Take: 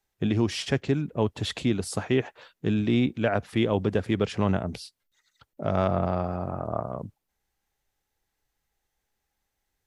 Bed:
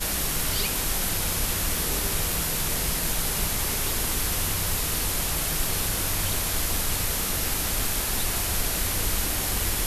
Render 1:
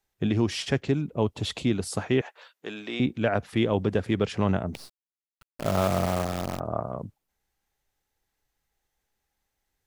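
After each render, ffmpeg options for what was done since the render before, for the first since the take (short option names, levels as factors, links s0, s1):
-filter_complex "[0:a]asettb=1/sr,asplit=3[s0][s1][s2];[s0]atrim=end=0.924[s3];[s1]atrim=start=0.92:end=1.66,asetpts=PTS-STARTPTS,afade=t=in:d=0.004:c=qsin,afade=t=out:st=0.736:d=0.004:c=qsin,equalizer=f=1700:t=o:w=0.42:g=-7.5[s4];[s2]atrim=start=1.656[s5];[s3][s4]acrossfade=d=0.004:c1=hsin:c2=qsin[s6];[s6][s5]acrossfade=d=0.004:c1=qsin:c2=hsin,asettb=1/sr,asplit=3[s7][s8][s9];[s7]atrim=end=2.214[s10];[s8]atrim=start=2.21:end=3,asetpts=PTS-STARTPTS,afade=t=in:d=0.004:c=qsin,afade=t=out:st=0.786:d=0.004:c=qsin,highpass=570[s11];[s9]atrim=start=2.996[s12];[s10][s11]acrossfade=d=0.004:c1=hsin:c2=qsin[s13];[s13][s12]acrossfade=d=0.004:c1=qsin:c2=hsin,asettb=1/sr,asplit=3[s14][s15][s16];[s14]atrim=end=4.744[s17];[s15]atrim=start=4.74:end=6.6,asetpts=PTS-STARTPTS,afade=t=in:d=0.004:c=qsin,afade=t=out:st=1.856:d=0.004:c=qsin,acrusher=bits=6:dc=4:mix=0:aa=0.000001[s18];[s16]atrim=start=6.596[s19];[s17][s18]acrossfade=d=0.004:c1=hsin:c2=qsin[s20];[s20][s19]acrossfade=d=0.004:c1=qsin:c2=hsin"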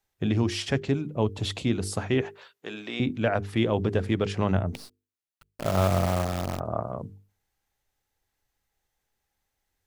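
-af "equalizer=f=96:t=o:w=0.23:g=7.5,bandreject=f=50:t=h:w=6,bandreject=f=100:t=h:w=6,bandreject=f=150:t=h:w=6,bandreject=f=200:t=h:w=6,bandreject=f=250:t=h:w=6,bandreject=f=300:t=h:w=6,bandreject=f=350:t=h:w=6,bandreject=f=400:t=h:w=6,bandreject=f=450:t=h:w=6"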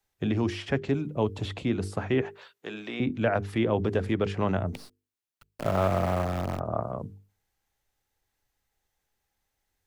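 -filter_complex "[0:a]acrossover=split=220|1600|2600[s0][s1][s2][s3];[s0]alimiter=level_in=1.26:limit=0.0631:level=0:latency=1,volume=0.794[s4];[s3]acompressor=threshold=0.00398:ratio=6[s5];[s4][s1][s2][s5]amix=inputs=4:normalize=0"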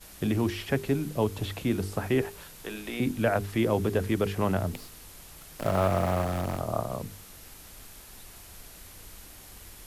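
-filter_complex "[1:a]volume=0.0841[s0];[0:a][s0]amix=inputs=2:normalize=0"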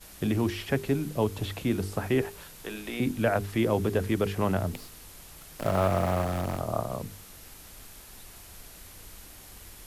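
-af anull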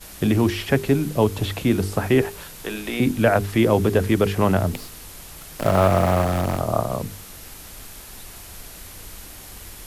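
-af "volume=2.51"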